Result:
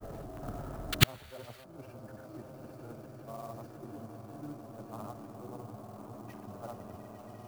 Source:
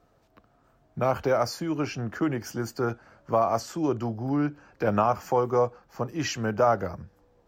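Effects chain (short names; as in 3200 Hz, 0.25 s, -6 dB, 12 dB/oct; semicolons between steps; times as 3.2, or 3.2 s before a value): tilt shelf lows +8.5 dB, about 1300 Hz; notch 500 Hz, Q 12; transient shaper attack -12 dB, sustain +5 dB; on a send: swelling echo 0.121 s, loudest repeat 8, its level -10.5 dB; on the sum: painted sound noise, 0.95–1.6, 1100–4700 Hz -31 dBFS; grains, pitch spread up and down by 0 st; flipped gate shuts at -22 dBFS, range -41 dB; clock jitter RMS 0.031 ms; gain +16.5 dB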